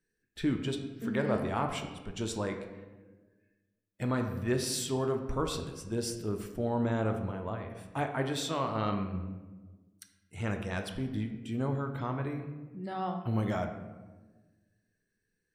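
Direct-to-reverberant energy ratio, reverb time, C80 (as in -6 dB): 4.5 dB, 1.3 s, 9.5 dB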